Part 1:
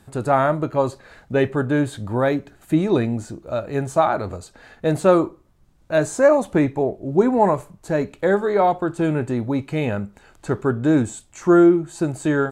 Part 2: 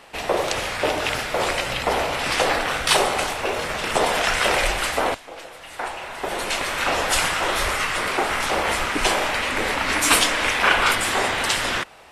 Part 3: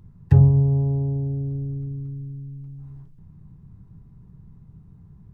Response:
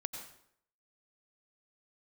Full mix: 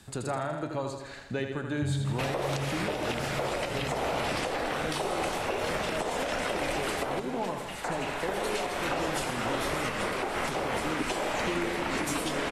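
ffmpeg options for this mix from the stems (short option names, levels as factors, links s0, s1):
-filter_complex "[0:a]equalizer=f=4800:w=0.35:g=13,acompressor=threshold=0.0316:ratio=2.5,volume=0.473,asplit=3[s0][s1][s2];[s1]volume=0.473[s3];[1:a]adelay=2050,volume=0.668,asplit=2[s4][s5];[s5]volume=0.376[s6];[2:a]adelay=1500,volume=0.75[s7];[s2]apad=whole_len=301358[s8];[s7][s8]sidechaincompress=threshold=0.00447:ratio=8:attack=16:release=249[s9];[3:a]atrim=start_sample=2205[s10];[s6][s10]afir=irnorm=-1:irlink=0[s11];[s3]aecho=0:1:81|162|243|324|405|486|567|648|729:1|0.59|0.348|0.205|0.121|0.0715|0.0422|0.0249|0.0147[s12];[s0][s4][s9][s11][s12]amix=inputs=5:normalize=0,lowshelf=f=420:g=4,acrossover=split=120|800[s13][s14][s15];[s13]acompressor=threshold=0.00708:ratio=4[s16];[s14]acompressor=threshold=0.0447:ratio=4[s17];[s15]acompressor=threshold=0.0251:ratio=4[s18];[s16][s17][s18]amix=inputs=3:normalize=0,alimiter=limit=0.1:level=0:latency=1:release=214"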